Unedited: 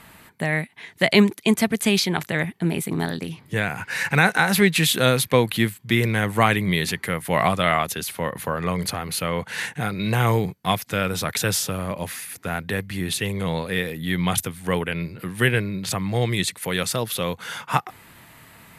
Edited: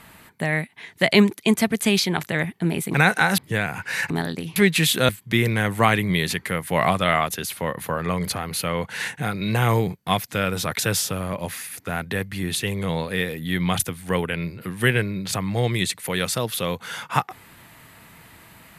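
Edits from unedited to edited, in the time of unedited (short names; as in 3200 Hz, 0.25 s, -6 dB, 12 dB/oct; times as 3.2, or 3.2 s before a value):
2.94–3.4 swap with 4.12–4.56
5.09–5.67 cut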